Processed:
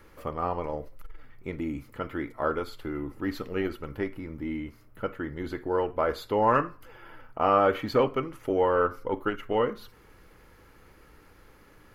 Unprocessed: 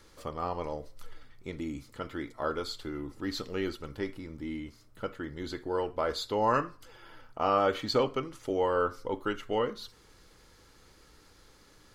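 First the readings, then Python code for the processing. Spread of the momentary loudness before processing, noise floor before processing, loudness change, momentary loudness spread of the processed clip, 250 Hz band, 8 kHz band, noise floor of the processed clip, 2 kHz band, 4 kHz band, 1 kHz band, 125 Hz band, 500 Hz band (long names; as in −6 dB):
14 LU, −59 dBFS, +3.5 dB, 13 LU, +4.0 dB, can't be measured, −56 dBFS, +3.5 dB, −5.0 dB, +4.0 dB, +4.0 dB, +4.0 dB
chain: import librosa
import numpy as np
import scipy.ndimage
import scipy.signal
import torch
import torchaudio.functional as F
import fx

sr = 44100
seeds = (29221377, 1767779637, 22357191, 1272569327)

y = fx.band_shelf(x, sr, hz=5600.0, db=-12.0, octaves=1.7)
y = fx.transformer_sat(y, sr, knee_hz=290.0)
y = y * 10.0 ** (4.5 / 20.0)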